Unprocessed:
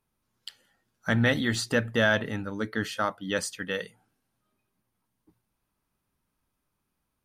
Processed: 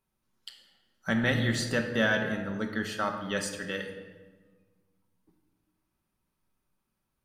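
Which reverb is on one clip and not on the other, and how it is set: shoebox room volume 1100 m³, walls mixed, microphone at 1.1 m; gain -3.5 dB

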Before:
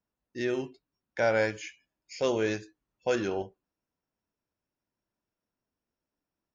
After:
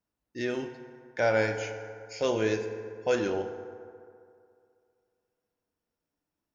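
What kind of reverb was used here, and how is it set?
FDN reverb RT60 2.4 s, low-frequency decay 0.85×, high-frequency decay 0.45×, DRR 6.5 dB

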